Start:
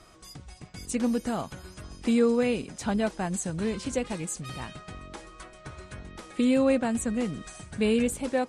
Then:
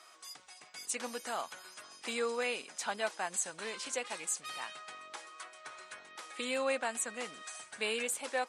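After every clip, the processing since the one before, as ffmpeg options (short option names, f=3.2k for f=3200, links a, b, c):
-af "highpass=850"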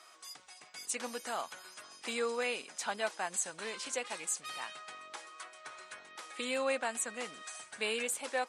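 -af anull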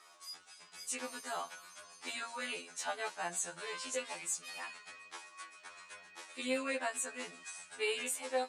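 -af "flanger=delay=7.5:depth=2:regen=-82:speed=0.77:shape=sinusoidal,afftfilt=real='re*2*eq(mod(b,4),0)':imag='im*2*eq(mod(b,4),0)':win_size=2048:overlap=0.75,volume=5dB"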